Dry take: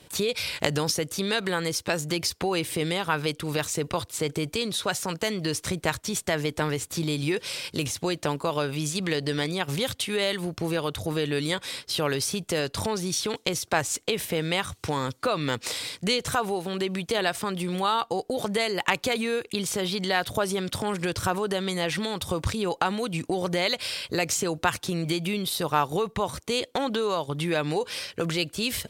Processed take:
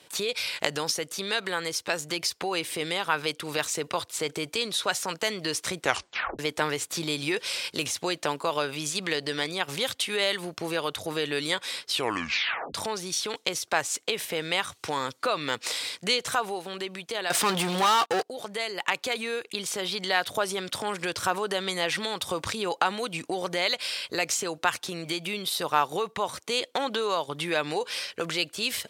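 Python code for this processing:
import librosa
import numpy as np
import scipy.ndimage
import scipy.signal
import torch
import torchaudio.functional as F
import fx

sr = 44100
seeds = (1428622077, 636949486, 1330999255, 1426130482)

y = fx.leveller(x, sr, passes=5, at=(17.3, 18.23))
y = fx.edit(y, sr, fx.tape_stop(start_s=5.8, length_s=0.59),
    fx.tape_stop(start_s=11.9, length_s=0.84), tone=tone)
y = fx.highpass(y, sr, hz=630.0, slope=6)
y = fx.rider(y, sr, range_db=10, speed_s=2.0)
y = fx.high_shelf(y, sr, hz=10000.0, db=-6.0)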